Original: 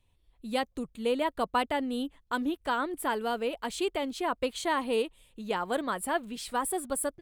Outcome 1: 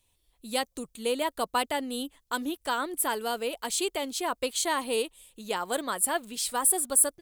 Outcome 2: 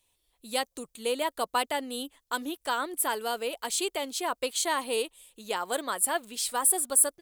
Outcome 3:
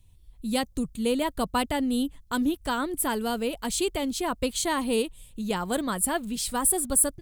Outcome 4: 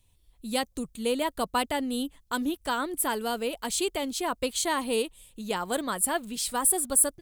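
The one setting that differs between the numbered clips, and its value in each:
tone controls, bass: -6, -14, +14, +4 dB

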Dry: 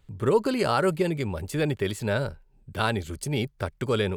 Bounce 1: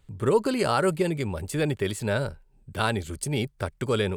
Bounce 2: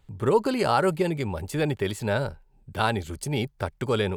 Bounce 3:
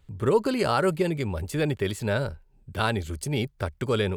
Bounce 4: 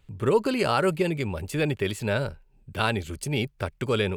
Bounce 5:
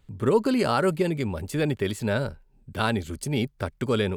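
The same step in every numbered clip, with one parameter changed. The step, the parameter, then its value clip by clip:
bell, frequency: 8700, 830, 75, 2600, 240 Hz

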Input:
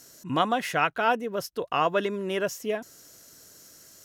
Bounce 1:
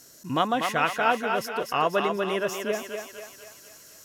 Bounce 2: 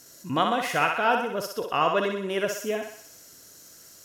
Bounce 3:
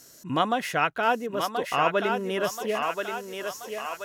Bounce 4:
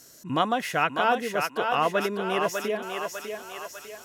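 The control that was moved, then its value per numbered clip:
thinning echo, time: 243, 62, 1030, 599 ms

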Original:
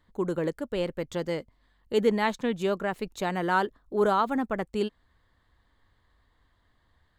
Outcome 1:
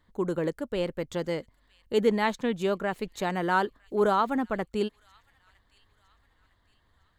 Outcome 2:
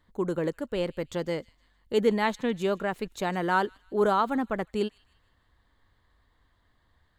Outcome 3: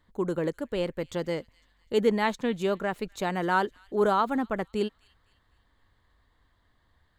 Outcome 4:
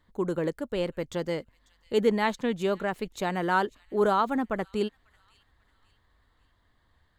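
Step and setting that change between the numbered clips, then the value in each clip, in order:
thin delay, time: 0.958, 0.155, 0.252, 0.544 s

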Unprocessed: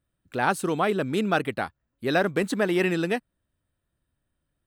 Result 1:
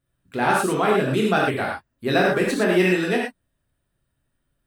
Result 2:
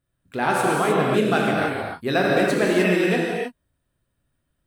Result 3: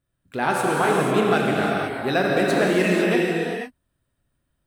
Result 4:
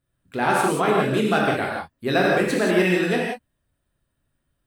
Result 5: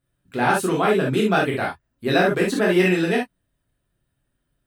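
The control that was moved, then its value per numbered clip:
non-linear reverb, gate: 140, 340, 530, 210, 90 ms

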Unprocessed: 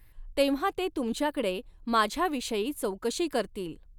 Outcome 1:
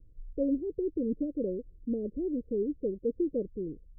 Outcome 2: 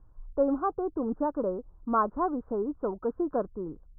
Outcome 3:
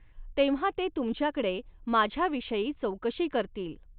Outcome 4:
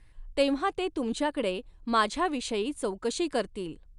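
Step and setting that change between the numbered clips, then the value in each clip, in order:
steep low-pass, frequency: 520, 1400, 3500, 10000 Hz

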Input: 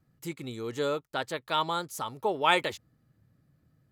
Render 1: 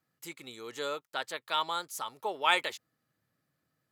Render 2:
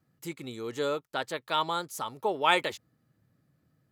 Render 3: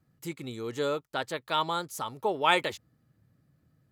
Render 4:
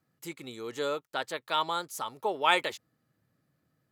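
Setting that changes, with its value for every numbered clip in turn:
HPF, cutoff: 1000, 160, 44, 400 Hz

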